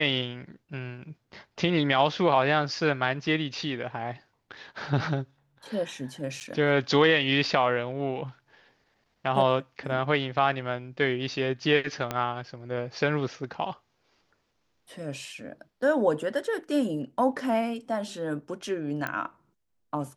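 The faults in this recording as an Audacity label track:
6.400000	6.410000	gap 9 ms
12.110000	12.110000	pop -14 dBFS
19.070000	19.070000	pop -17 dBFS

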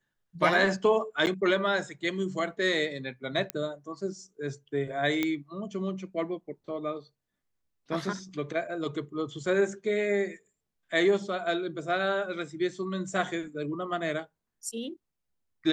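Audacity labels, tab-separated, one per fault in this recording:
1.260000	1.270000	gap 9.3 ms
3.500000	3.500000	pop -14 dBFS
5.230000	5.230000	pop -14 dBFS

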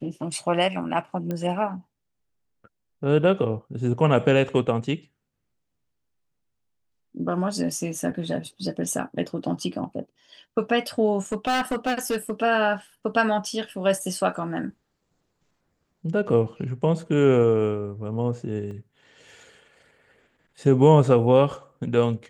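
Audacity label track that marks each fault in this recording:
1.310000	1.310000	pop -17 dBFS
11.320000	12.310000	clipped -20 dBFS
18.710000	18.710000	gap 3.5 ms

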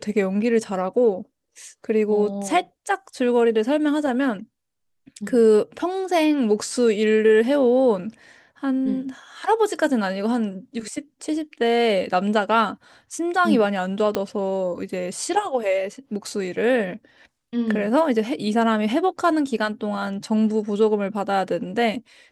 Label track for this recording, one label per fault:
14.150000	14.150000	pop -9 dBFS

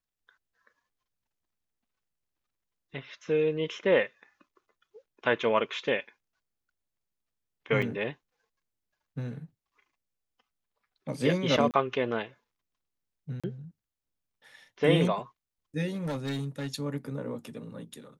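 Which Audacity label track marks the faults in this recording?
7.820000	7.830000	gap 5.3 ms
11.710000	11.740000	gap 28 ms
13.400000	13.440000	gap 36 ms
16.040000	16.670000	clipped -28.5 dBFS

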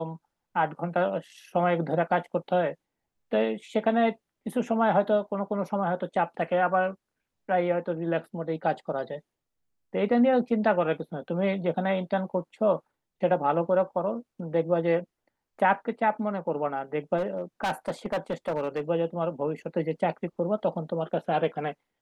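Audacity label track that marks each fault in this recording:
17.170000	18.810000	clipped -23.5 dBFS

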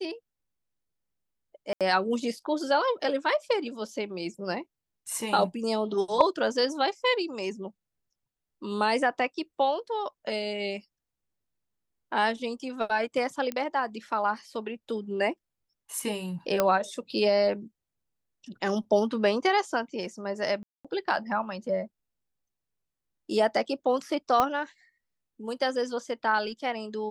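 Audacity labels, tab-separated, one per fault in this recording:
1.730000	1.810000	gap 77 ms
13.520000	13.520000	pop -18 dBFS
16.600000	16.600000	pop -9 dBFS
20.630000	20.850000	gap 0.216 s
24.400000	24.400000	pop -10 dBFS

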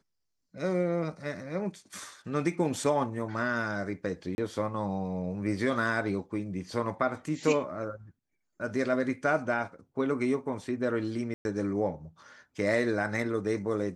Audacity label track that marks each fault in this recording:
4.350000	4.380000	gap 31 ms
11.340000	11.450000	gap 0.111 s

